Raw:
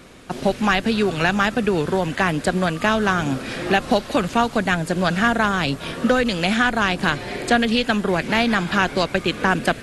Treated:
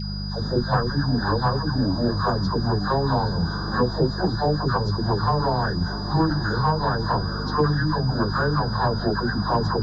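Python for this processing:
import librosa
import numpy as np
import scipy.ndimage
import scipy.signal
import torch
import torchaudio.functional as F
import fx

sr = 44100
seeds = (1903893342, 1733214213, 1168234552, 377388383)

p1 = fx.pitch_bins(x, sr, semitones=-8.0)
p2 = scipy.signal.sosfilt(scipy.signal.ellip(3, 1.0, 40, [1600.0, 3800.0], 'bandstop', fs=sr, output='sos'), p1)
p3 = fx.tilt_shelf(p2, sr, db=-7.5, hz=1500.0)
p4 = fx.rider(p3, sr, range_db=4, speed_s=0.5)
p5 = p3 + F.gain(torch.from_numpy(p4), 1.0).numpy()
p6 = p5 + 10.0 ** (-19.0 / 20.0) * np.sin(2.0 * np.pi * 4900.0 * np.arange(len(p5)) / sr)
p7 = fx.dispersion(p6, sr, late='lows', ms=109.0, hz=700.0)
p8 = fx.dmg_buzz(p7, sr, base_hz=50.0, harmonics=4, level_db=-29.0, tilt_db=-1, odd_only=False)
p9 = 10.0 ** (-4.0 / 20.0) * np.tanh(p8 / 10.0 ** (-4.0 / 20.0))
p10 = fx.spacing_loss(p9, sr, db_at_10k=33)
y = fx.echo_thinned(p10, sr, ms=818, feedback_pct=61, hz=1100.0, wet_db=-12.5)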